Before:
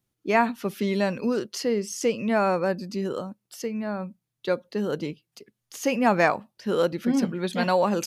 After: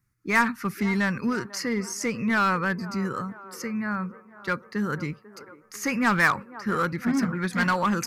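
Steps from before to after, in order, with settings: EQ curve 110 Hz 0 dB, 660 Hz -20 dB, 1200 Hz 0 dB, 2100 Hz 0 dB, 3200 Hz -21 dB, 4800 Hz -8 dB; in parallel at -5 dB: wavefolder -28.5 dBFS; on the sum: band-limited delay 0.495 s, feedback 61%, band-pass 660 Hz, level -14.5 dB; gain +5 dB

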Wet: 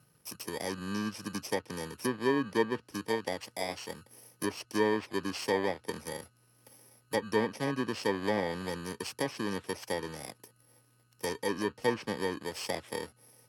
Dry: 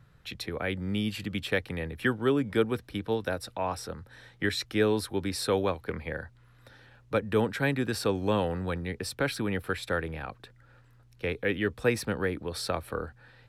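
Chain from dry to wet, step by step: FFT order left unsorted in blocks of 32 samples; treble ducked by the level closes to 2400 Hz, closed at -22 dBFS; Bessel high-pass 240 Hz, order 2

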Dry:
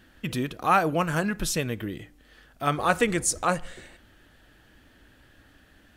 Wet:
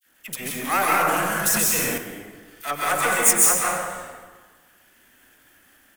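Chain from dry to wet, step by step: half-wave gain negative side -12 dB; RIAA curve recording; expander -54 dBFS; bell 4200 Hz -8 dB 0.77 oct; dispersion lows, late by 47 ms, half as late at 1200 Hz; frequency-shifting echo 0.101 s, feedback 58%, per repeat -92 Hz, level -19 dB; plate-style reverb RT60 1.4 s, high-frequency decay 0.55×, pre-delay 0.12 s, DRR -4.5 dB; 0.6–1.98 sustainer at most 21 dB/s; gain +1 dB

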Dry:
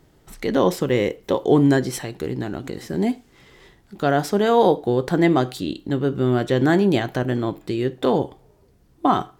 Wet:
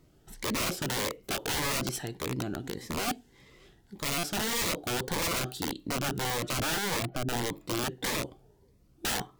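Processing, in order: 6.6–7.36 spectral contrast raised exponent 1.8; wrapped overs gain 18 dB; stuck buffer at 4.18, samples 256, times 8; cascading phaser rising 1.7 Hz; gain -5.5 dB

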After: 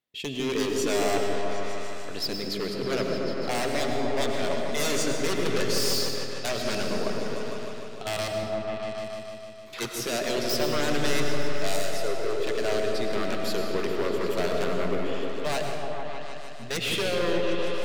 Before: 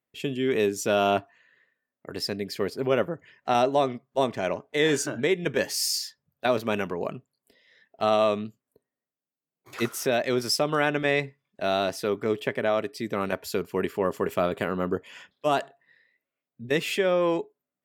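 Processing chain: bell 3700 Hz +10.5 dB 0.95 oct; 8.02–8.43 level quantiser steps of 21 dB; wavefolder -20 dBFS; 11.76–12.44 fixed phaser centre 790 Hz, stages 6; repeats that get brighter 0.152 s, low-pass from 400 Hz, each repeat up 1 oct, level 0 dB; reverb RT60 1.7 s, pre-delay 65 ms, DRR 4 dB; gain -3.5 dB

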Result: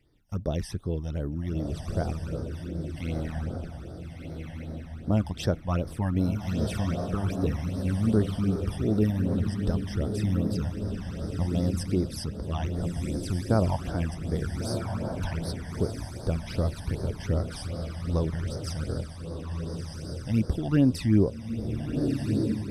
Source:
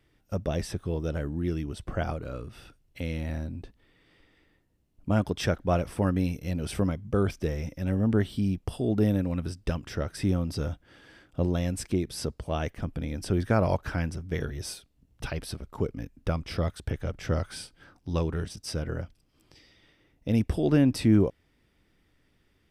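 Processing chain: diffused feedback echo 1.349 s, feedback 40%, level -4 dB; phaser stages 12, 2.6 Hz, lowest notch 400–2700 Hz

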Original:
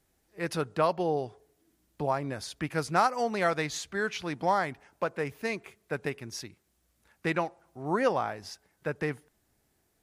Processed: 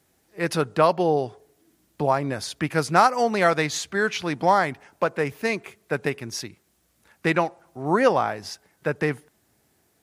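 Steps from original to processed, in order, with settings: HPF 86 Hz; gain +7.5 dB

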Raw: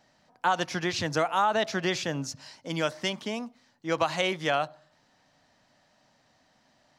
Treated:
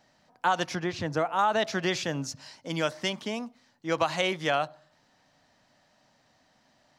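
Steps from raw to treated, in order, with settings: 0.75–1.39 high shelf 2200 Hz -11 dB

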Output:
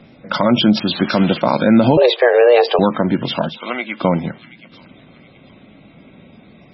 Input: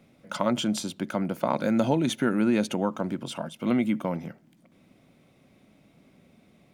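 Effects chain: 0.8–1.4 switching spikes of -19.5 dBFS; 1.97–2.79 frequency shift +240 Hz; 3.58–4.01 Bessel high-pass 1000 Hz, order 2; thin delay 0.726 s, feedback 34%, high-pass 2500 Hz, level -13.5 dB; maximiser +15.5 dB; gain -1 dB; MP3 16 kbps 24000 Hz

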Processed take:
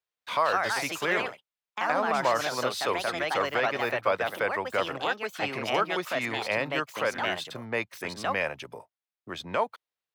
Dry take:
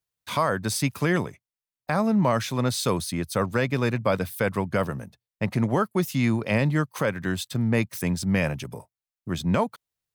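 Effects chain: three-band isolator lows -16 dB, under 330 Hz, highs -13 dB, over 4400 Hz; echoes that change speed 0.218 s, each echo +3 st, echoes 2; dynamic EQ 200 Hz, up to -7 dB, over -43 dBFS, Q 0.73

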